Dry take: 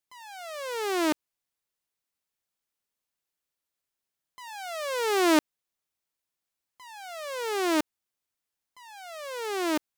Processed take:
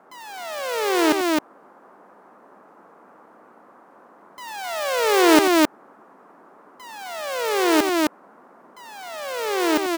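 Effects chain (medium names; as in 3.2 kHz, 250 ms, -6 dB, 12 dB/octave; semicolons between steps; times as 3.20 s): careless resampling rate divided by 2×, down none, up hold; band noise 200–1300 Hz -59 dBFS; loudspeakers at several distances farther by 30 m -12 dB, 90 m -2 dB; trim +6.5 dB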